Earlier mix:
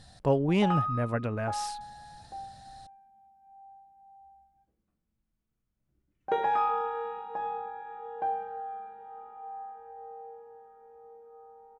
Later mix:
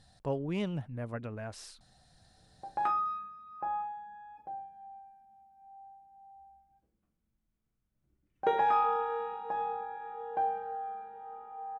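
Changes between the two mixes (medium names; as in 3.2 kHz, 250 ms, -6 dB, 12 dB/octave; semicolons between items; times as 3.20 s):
speech -8.5 dB; background: entry +2.15 s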